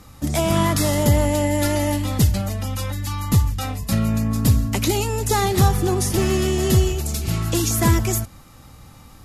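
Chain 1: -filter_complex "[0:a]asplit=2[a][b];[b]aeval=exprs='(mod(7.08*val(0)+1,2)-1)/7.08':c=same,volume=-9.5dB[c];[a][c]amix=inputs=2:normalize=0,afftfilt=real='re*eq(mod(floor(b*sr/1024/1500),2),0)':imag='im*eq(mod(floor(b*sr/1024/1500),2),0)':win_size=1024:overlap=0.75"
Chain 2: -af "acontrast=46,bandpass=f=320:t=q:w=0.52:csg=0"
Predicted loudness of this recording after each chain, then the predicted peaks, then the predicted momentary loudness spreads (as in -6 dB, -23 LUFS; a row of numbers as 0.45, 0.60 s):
-20.0, -18.5 LUFS; -5.0, -3.5 dBFS; 6, 9 LU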